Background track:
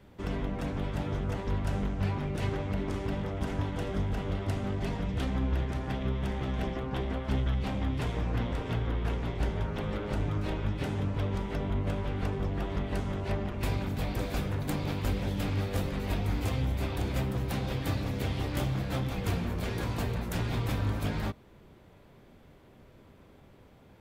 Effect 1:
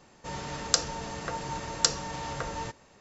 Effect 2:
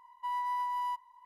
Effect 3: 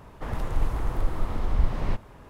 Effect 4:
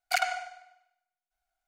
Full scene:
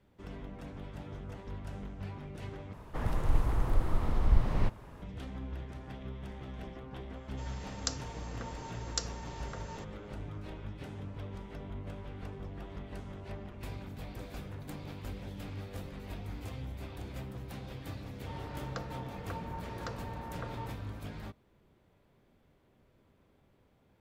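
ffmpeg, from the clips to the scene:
-filter_complex "[1:a]asplit=2[s0][s1];[0:a]volume=0.266[s2];[3:a]equalizer=f=110:w=0.59:g=3[s3];[s1]lowpass=1600[s4];[s2]asplit=2[s5][s6];[s5]atrim=end=2.734[s7];[s3]atrim=end=2.29,asetpts=PTS-STARTPTS,volume=0.708[s8];[s6]atrim=start=5.016[s9];[s0]atrim=end=3,asetpts=PTS-STARTPTS,volume=0.282,afade=t=in:d=0.004:c=hsin,afade=t=out:st=2.996:d=0.004:c=hsin,adelay=7130[s10];[s4]atrim=end=3,asetpts=PTS-STARTPTS,volume=0.422,afade=t=in:d=0.004:c=hsin,afade=t=out:st=2.996:d=0.004:c=hsin,adelay=18020[s11];[s7][s8]acrossfade=d=0.004:c1=hsin:c2=hsin[s12];[s12][s9]acrossfade=d=0.004:c1=hsin:c2=hsin[s13];[s13][s10][s11]amix=inputs=3:normalize=0"

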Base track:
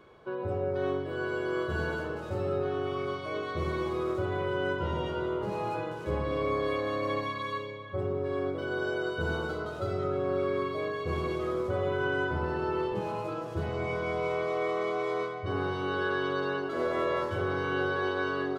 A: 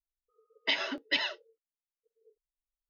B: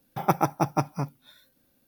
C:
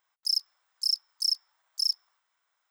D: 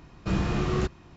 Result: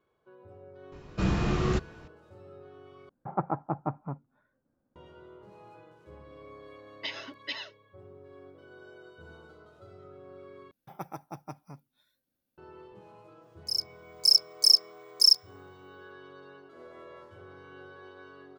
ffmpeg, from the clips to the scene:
-filter_complex "[2:a]asplit=2[s0][s1];[0:a]volume=0.106[s2];[s0]lowpass=f=1400:w=0.5412,lowpass=f=1400:w=1.3066[s3];[1:a]highshelf=f=5200:g=7.5[s4];[3:a]dynaudnorm=f=250:g=5:m=5.62[s5];[s2]asplit=3[s6][s7][s8];[s6]atrim=end=3.094[s9];[s3]atrim=end=1.87,asetpts=PTS-STARTPTS,volume=0.447[s10];[s7]atrim=start=4.956:end=10.714[s11];[s1]atrim=end=1.87,asetpts=PTS-STARTPTS,volume=0.133[s12];[s8]atrim=start=12.576[s13];[4:a]atrim=end=1.16,asetpts=PTS-STARTPTS,volume=0.944,afade=t=in:d=0.004:c=hsin,afade=t=out:st=1.156:d=0.004:c=hsin,adelay=920[s14];[s4]atrim=end=2.89,asetpts=PTS-STARTPTS,volume=0.355,afade=t=in:d=0.004:c=hsin,afade=t=out:st=2.886:d=0.004:c=hsin,adelay=6360[s15];[s5]atrim=end=2.7,asetpts=PTS-STARTPTS,volume=0.473,afade=t=in:d=0.004:c=hsin,afade=t=out:st=2.696:d=0.004:c=hsin,adelay=13420[s16];[s9][s10]acrossfade=d=0.004:c1=hsin:c2=hsin[s17];[s17][s11]acrossfade=d=0.004:c1=hsin:c2=hsin[s18];[s18][s12]acrossfade=d=0.004:c1=hsin:c2=hsin[s19];[s19][s13]acrossfade=d=0.004:c1=hsin:c2=hsin[s20];[s20][s14][s15][s16]amix=inputs=4:normalize=0"

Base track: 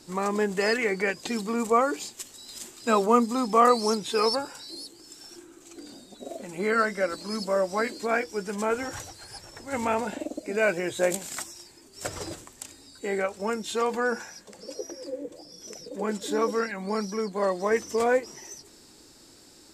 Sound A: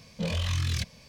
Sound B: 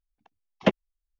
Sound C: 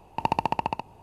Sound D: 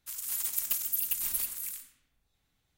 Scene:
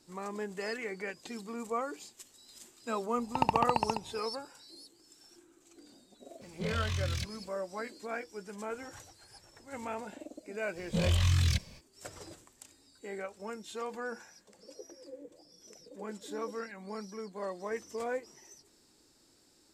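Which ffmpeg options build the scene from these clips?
-filter_complex "[1:a]asplit=2[s0][s1];[0:a]volume=0.237[s2];[s1]lowshelf=f=60:g=10[s3];[3:a]atrim=end=1.02,asetpts=PTS-STARTPTS,volume=0.708,afade=t=in:d=0.004:c=hsin,afade=t=out:st=1.016:d=0.004:c=hsin,adelay=139797S[s4];[s0]atrim=end=1.08,asetpts=PTS-STARTPTS,volume=0.531,afade=t=in:d=0.004:c=hsin,afade=t=out:st=1.076:d=0.004:c=hsin,adelay=6410[s5];[s3]atrim=end=1.08,asetpts=PTS-STARTPTS,volume=0.891,afade=t=in:d=0.05,afade=t=out:st=1.03:d=0.05,adelay=473634S[s6];[s2][s4][s5][s6]amix=inputs=4:normalize=0"

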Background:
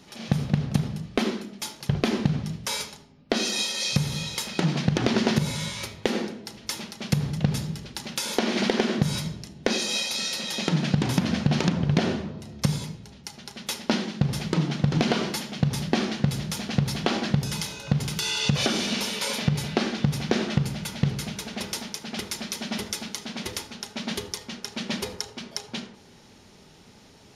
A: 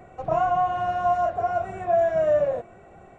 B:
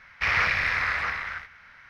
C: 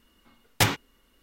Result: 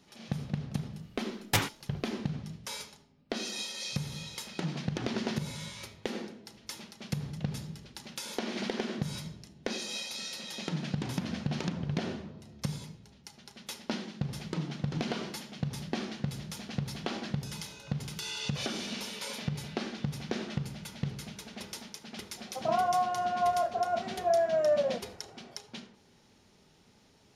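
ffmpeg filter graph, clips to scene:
-filter_complex "[0:a]volume=0.299[s0];[1:a]highpass=150[s1];[3:a]atrim=end=1.22,asetpts=PTS-STARTPTS,volume=0.531,afade=t=in:d=0.004:c=hsin,afade=t=out:st=1.216:d=0.004:c=hsin,adelay=930[s2];[s1]atrim=end=3.18,asetpts=PTS-STARTPTS,volume=0.531,afade=t=in:d=0.004:c=hsin,afade=t=out:st=3.176:d=0.004:c=hsin,adelay=22370[s3];[s0][s2][s3]amix=inputs=3:normalize=0"

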